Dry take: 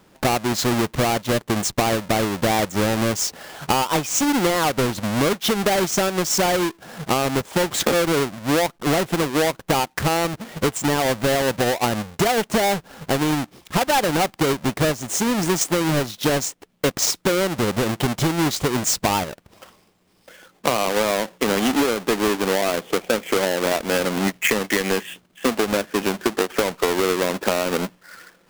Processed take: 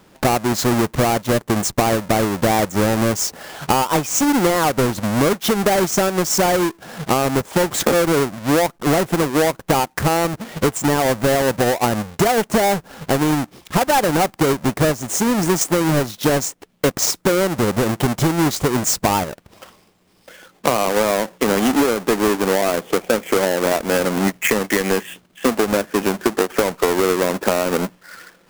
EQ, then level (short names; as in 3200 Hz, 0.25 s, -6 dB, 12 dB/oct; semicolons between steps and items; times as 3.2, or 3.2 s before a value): dynamic EQ 3400 Hz, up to -5 dB, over -37 dBFS, Q 0.88; +3.5 dB